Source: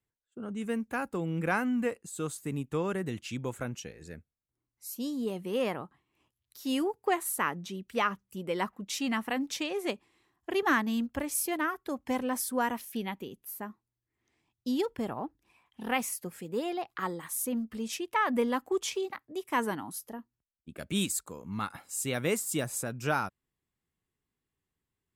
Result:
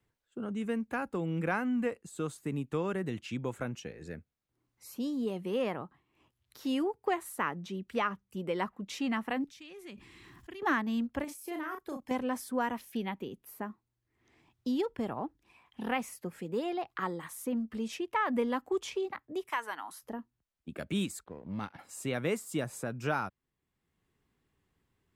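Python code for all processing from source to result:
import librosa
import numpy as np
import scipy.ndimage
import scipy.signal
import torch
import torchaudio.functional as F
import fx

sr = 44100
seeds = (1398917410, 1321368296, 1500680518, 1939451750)

y = fx.chain(x, sr, fx.tone_stack(knobs='6-0-2'),
    fx.env_flatten(amount_pct=70), at=(9.44, 10.62))
y = fx.chain(y, sr, fx.high_shelf(hz=6400.0, db=11.5),
    fx.level_steps(step_db=20),
    fx.doubler(ms=35.0, db=-5.0), at=(11.24, 12.11))
y = fx.chain(y, sr, fx.highpass(hz=980.0, slope=12),
    fx.band_squash(depth_pct=70), at=(19.49, 20.02))
y = fx.chain(y, sr, fx.law_mismatch(coded='A'),
    fx.peak_eq(hz=1200.0, db=-8.0, octaves=0.57),
    fx.resample_linear(factor=6), at=(21.24, 21.79))
y = fx.high_shelf(y, sr, hz=4900.0, db=-11.0)
y = fx.band_squash(y, sr, depth_pct=40)
y = F.gain(torch.from_numpy(y), -1.0).numpy()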